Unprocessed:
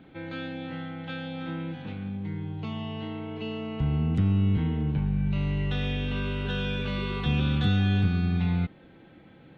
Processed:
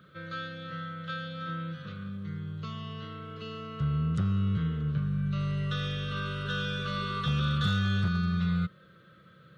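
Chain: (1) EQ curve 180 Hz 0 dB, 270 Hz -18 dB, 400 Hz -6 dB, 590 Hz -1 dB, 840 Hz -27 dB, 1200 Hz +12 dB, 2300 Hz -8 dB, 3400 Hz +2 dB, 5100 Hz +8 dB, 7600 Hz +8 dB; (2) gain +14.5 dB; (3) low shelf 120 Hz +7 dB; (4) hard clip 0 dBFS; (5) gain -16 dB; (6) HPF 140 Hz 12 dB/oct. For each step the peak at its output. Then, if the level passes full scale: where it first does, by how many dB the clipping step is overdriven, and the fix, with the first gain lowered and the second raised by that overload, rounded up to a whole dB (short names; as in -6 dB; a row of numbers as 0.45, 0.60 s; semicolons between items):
-13.5, +1.0, +3.5, 0.0, -16.0, -16.5 dBFS; step 2, 3.5 dB; step 2 +10.5 dB, step 5 -12 dB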